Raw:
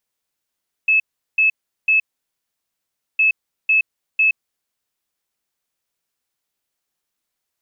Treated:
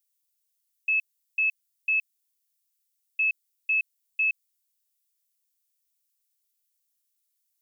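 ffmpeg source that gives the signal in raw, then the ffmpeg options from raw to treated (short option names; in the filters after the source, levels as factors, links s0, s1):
-f lavfi -i "aevalsrc='0.266*sin(2*PI*2600*t)*clip(min(mod(mod(t,2.31),0.5),0.12-mod(mod(t,2.31),0.5))/0.005,0,1)*lt(mod(t,2.31),1.5)':d=4.62:s=44100"
-af "aderivative"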